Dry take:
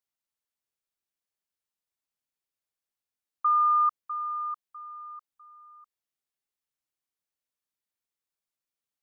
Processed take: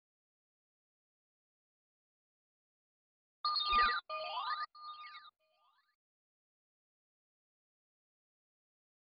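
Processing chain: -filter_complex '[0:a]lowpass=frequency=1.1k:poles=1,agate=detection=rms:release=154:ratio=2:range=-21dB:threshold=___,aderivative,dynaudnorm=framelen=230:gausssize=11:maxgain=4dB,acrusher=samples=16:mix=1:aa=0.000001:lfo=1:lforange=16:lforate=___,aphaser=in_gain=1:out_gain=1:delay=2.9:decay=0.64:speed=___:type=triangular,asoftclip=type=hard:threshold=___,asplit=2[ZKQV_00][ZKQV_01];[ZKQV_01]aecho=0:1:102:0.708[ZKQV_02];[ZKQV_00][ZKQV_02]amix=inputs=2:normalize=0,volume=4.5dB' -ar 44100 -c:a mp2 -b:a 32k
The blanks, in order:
-46dB, 0.78, 0.38, -32.5dB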